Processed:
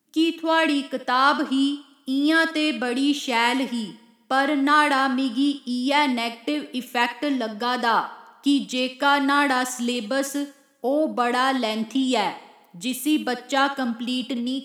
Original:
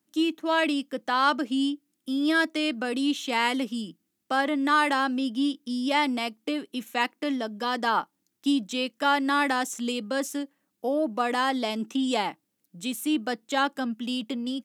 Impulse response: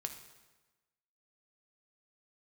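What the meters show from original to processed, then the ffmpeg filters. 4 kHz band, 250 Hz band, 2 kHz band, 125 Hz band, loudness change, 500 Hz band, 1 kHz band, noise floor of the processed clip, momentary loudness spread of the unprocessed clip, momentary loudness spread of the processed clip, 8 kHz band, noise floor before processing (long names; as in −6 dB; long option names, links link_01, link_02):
+4.5 dB, +4.0 dB, +4.5 dB, can't be measured, +4.5 dB, +4.0 dB, +4.5 dB, −55 dBFS, 9 LU, 9 LU, +4.5 dB, −78 dBFS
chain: -filter_complex "[0:a]asplit=2[link_01][link_02];[1:a]atrim=start_sample=2205,lowshelf=frequency=240:gain=-11,adelay=63[link_03];[link_02][link_03]afir=irnorm=-1:irlink=0,volume=-8.5dB[link_04];[link_01][link_04]amix=inputs=2:normalize=0,volume=4dB"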